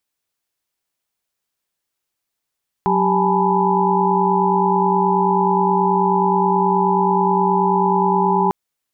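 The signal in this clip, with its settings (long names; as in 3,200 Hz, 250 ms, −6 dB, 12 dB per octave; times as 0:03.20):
held notes F#3/G4/G#5/A5/B5 sine, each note −20 dBFS 5.65 s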